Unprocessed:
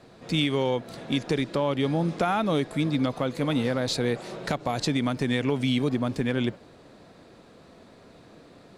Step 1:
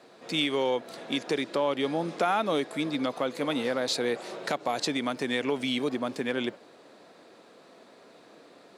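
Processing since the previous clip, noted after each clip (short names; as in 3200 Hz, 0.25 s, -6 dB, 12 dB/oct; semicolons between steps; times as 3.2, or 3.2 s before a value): HPF 320 Hz 12 dB/oct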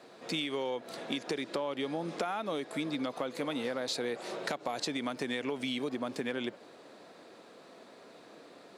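compressor, threshold -31 dBFS, peak gain reduction 9.5 dB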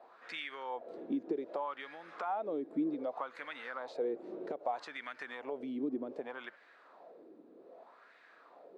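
wah 0.64 Hz 290–1800 Hz, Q 3.2; gain +4 dB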